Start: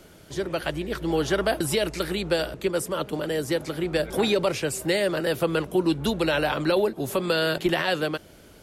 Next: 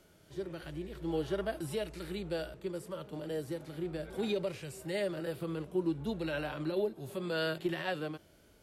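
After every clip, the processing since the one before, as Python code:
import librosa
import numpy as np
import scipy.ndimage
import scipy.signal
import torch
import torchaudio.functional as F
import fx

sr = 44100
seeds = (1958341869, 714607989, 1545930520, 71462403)

y = fx.hpss(x, sr, part='percussive', gain_db=-15)
y = y * librosa.db_to_amplitude(-8.5)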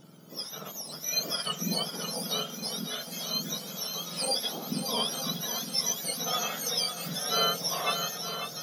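y = fx.octave_mirror(x, sr, pivot_hz=1400.0)
y = fx.echo_swing(y, sr, ms=911, ratio=1.5, feedback_pct=51, wet_db=-8.5)
y = y * librosa.db_to_amplitude(8.5)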